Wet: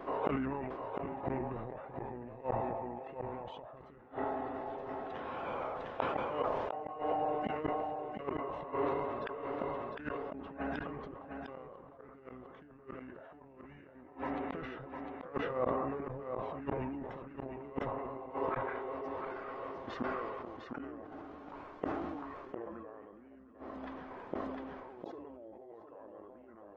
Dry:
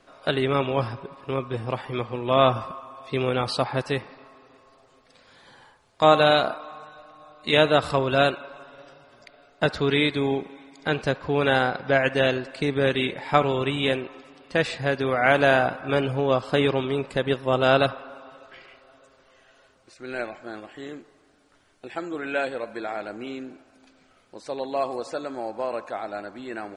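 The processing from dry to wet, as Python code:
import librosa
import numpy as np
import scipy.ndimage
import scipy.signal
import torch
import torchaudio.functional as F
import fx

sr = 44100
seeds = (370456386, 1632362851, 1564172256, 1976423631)

p1 = fx.octave_divider(x, sr, octaves=2, level_db=-6.0)
p2 = 10.0 ** (-20.5 / 20.0) * (np.abs((p1 / 10.0 ** (-20.5 / 20.0) + 3.0) % 4.0 - 2.0) - 1.0)
p3 = p1 + (p2 * librosa.db_to_amplitude(-10.0))
p4 = fx.tilt_eq(p3, sr, slope=1.5)
p5 = fx.over_compress(p4, sr, threshold_db=-28.0, ratio=-0.5)
p6 = fx.gate_flip(p5, sr, shuts_db=-27.0, range_db=-35)
p7 = scipy.signal.sosfilt(scipy.signal.butter(2, 1100.0, 'lowpass', fs=sr, output='sos'), p6)
p8 = p7 + 10.0 ** (-6.5 / 20.0) * np.pad(p7, (int(704 * sr / 1000.0), 0))[:len(p7)]
p9 = fx.formant_shift(p8, sr, semitones=-5)
p10 = fx.low_shelf(p9, sr, hz=350.0, db=-11.5)
p11 = fx.sustainer(p10, sr, db_per_s=24.0)
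y = p11 * librosa.db_to_amplitude(12.5)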